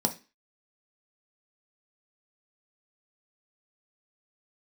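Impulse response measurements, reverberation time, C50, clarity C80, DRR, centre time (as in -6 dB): 0.30 s, 15.5 dB, 22.0 dB, 4.0 dB, 8 ms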